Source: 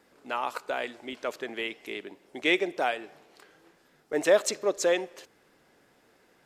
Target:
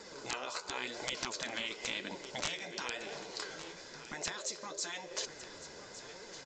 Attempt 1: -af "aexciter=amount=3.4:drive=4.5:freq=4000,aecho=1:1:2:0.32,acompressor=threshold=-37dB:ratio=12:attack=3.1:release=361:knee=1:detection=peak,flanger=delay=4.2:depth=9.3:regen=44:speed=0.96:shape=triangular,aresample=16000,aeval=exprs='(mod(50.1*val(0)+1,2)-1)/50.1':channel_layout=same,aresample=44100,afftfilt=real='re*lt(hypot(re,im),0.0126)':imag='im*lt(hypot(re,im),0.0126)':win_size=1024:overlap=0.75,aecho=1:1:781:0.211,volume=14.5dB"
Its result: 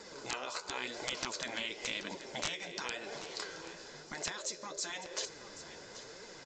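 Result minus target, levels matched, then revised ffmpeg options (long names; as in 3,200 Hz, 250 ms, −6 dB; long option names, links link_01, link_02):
echo 378 ms early
-af "aexciter=amount=3.4:drive=4.5:freq=4000,aecho=1:1:2:0.32,acompressor=threshold=-37dB:ratio=12:attack=3.1:release=361:knee=1:detection=peak,flanger=delay=4.2:depth=9.3:regen=44:speed=0.96:shape=triangular,aresample=16000,aeval=exprs='(mod(50.1*val(0)+1,2)-1)/50.1':channel_layout=same,aresample=44100,afftfilt=real='re*lt(hypot(re,im),0.0126)':imag='im*lt(hypot(re,im),0.0126)':win_size=1024:overlap=0.75,aecho=1:1:1159:0.211,volume=14.5dB"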